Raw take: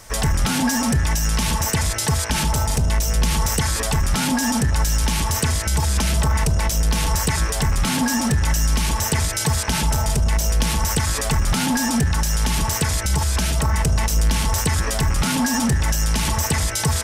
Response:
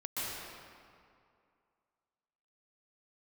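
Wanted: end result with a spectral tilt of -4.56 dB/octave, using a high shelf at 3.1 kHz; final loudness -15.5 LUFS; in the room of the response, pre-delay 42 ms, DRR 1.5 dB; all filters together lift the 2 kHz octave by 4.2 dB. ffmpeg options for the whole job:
-filter_complex "[0:a]equalizer=f=2000:t=o:g=7.5,highshelf=f=3100:g=-7,asplit=2[s0][s1];[1:a]atrim=start_sample=2205,adelay=42[s2];[s1][s2]afir=irnorm=-1:irlink=0,volume=0.501[s3];[s0][s3]amix=inputs=2:normalize=0,volume=1.41"

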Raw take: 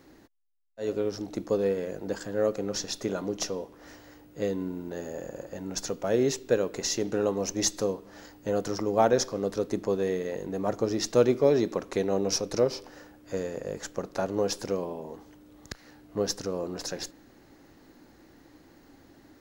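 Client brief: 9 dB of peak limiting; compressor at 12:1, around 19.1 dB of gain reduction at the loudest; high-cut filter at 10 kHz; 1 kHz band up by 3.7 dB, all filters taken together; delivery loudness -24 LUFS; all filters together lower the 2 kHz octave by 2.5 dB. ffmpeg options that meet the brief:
-af "lowpass=10000,equalizer=f=1000:t=o:g=6.5,equalizer=f=2000:t=o:g=-6,acompressor=threshold=0.02:ratio=12,volume=7.08,alimiter=limit=0.266:level=0:latency=1"

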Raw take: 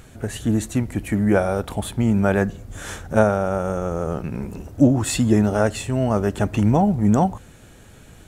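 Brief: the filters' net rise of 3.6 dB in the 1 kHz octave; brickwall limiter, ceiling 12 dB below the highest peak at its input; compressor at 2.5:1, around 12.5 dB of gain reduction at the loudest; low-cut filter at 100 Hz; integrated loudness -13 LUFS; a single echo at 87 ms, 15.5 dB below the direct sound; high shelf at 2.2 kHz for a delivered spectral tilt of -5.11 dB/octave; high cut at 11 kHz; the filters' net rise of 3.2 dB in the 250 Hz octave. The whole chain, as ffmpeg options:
-af "highpass=100,lowpass=11000,equalizer=f=250:t=o:g=4,equalizer=f=1000:t=o:g=4,highshelf=f=2200:g=4.5,acompressor=threshold=0.0501:ratio=2.5,alimiter=limit=0.0944:level=0:latency=1,aecho=1:1:87:0.168,volume=7.5"

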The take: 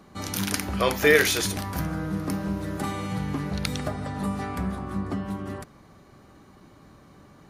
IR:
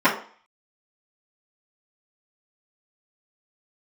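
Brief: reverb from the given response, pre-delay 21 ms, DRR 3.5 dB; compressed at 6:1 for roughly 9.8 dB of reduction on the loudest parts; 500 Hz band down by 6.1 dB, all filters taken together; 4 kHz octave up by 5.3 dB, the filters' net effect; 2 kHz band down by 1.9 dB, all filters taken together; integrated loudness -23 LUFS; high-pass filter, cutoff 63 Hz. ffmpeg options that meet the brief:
-filter_complex "[0:a]highpass=63,equalizer=f=500:t=o:g=-7,equalizer=f=2000:t=o:g=-3.5,equalizer=f=4000:t=o:g=7.5,acompressor=threshold=0.0447:ratio=6,asplit=2[s0][s1];[1:a]atrim=start_sample=2205,adelay=21[s2];[s1][s2]afir=irnorm=-1:irlink=0,volume=0.0596[s3];[s0][s3]amix=inputs=2:normalize=0,volume=2.51"

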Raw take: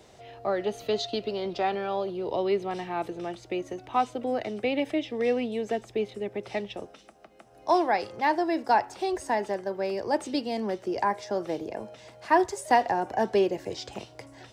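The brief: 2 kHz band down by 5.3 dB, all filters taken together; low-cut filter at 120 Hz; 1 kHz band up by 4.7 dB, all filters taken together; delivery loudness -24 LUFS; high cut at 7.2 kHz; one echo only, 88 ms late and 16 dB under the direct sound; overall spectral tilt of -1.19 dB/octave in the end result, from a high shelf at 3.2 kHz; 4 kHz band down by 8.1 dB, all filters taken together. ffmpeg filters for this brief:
-af "highpass=120,lowpass=7200,equalizer=f=1000:t=o:g=8,equalizer=f=2000:t=o:g=-6.5,highshelf=f=3200:g=-6.5,equalizer=f=4000:t=o:g=-3.5,aecho=1:1:88:0.158,volume=1.26"

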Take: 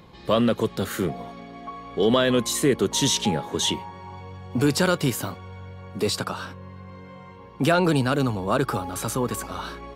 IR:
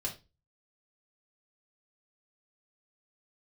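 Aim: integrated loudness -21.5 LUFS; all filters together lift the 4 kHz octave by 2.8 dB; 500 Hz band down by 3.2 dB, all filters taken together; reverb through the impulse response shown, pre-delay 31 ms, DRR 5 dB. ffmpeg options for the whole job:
-filter_complex "[0:a]equalizer=f=500:t=o:g=-4,equalizer=f=4000:t=o:g=3.5,asplit=2[s0][s1];[1:a]atrim=start_sample=2205,adelay=31[s2];[s1][s2]afir=irnorm=-1:irlink=0,volume=0.473[s3];[s0][s3]amix=inputs=2:normalize=0,volume=1.12"

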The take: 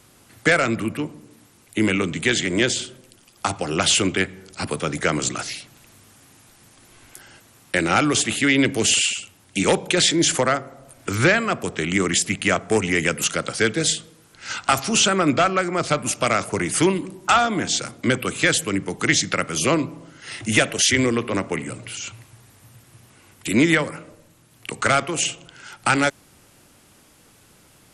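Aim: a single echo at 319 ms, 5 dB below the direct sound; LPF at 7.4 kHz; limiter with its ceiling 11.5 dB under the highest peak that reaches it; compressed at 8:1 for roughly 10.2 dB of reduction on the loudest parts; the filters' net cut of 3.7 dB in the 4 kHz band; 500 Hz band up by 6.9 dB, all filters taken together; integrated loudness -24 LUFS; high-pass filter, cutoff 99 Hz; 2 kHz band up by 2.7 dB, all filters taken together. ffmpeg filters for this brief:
-af "highpass=99,lowpass=7400,equalizer=f=500:t=o:g=8.5,equalizer=f=2000:t=o:g=4.5,equalizer=f=4000:t=o:g=-7,acompressor=threshold=0.126:ratio=8,alimiter=limit=0.15:level=0:latency=1,aecho=1:1:319:0.562,volume=1.26"

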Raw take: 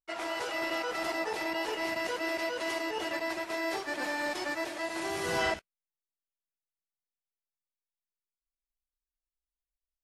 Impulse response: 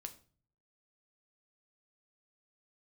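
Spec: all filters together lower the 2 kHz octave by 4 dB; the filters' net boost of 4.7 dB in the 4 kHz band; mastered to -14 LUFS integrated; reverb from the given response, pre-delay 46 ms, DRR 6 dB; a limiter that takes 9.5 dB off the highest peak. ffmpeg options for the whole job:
-filter_complex "[0:a]equalizer=f=2000:t=o:g=-6.5,equalizer=f=4000:t=o:g=8.5,alimiter=level_in=1.78:limit=0.0631:level=0:latency=1,volume=0.562,asplit=2[s0][s1];[1:a]atrim=start_sample=2205,adelay=46[s2];[s1][s2]afir=irnorm=-1:irlink=0,volume=0.841[s3];[s0][s3]amix=inputs=2:normalize=0,volume=12.6"

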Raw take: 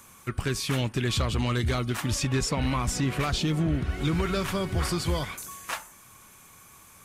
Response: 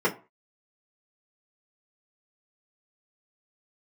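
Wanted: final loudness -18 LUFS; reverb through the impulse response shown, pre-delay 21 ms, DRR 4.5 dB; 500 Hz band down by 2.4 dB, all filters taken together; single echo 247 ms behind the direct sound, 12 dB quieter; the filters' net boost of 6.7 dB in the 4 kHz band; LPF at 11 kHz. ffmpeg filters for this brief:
-filter_complex "[0:a]lowpass=11000,equalizer=f=500:t=o:g=-3.5,equalizer=f=4000:t=o:g=8.5,aecho=1:1:247:0.251,asplit=2[s0][s1];[1:a]atrim=start_sample=2205,adelay=21[s2];[s1][s2]afir=irnorm=-1:irlink=0,volume=0.119[s3];[s0][s3]amix=inputs=2:normalize=0,volume=2.37"

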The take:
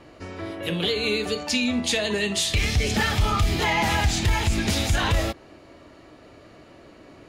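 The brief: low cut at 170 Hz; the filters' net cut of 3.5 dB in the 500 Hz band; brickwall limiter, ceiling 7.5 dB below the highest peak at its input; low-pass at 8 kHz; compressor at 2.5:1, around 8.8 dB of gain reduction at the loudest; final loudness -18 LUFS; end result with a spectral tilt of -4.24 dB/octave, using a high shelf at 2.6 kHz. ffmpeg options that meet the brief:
-af "highpass=170,lowpass=8000,equalizer=f=500:t=o:g=-4,highshelf=f=2600:g=-9,acompressor=threshold=0.0158:ratio=2.5,volume=10.6,alimiter=limit=0.335:level=0:latency=1"

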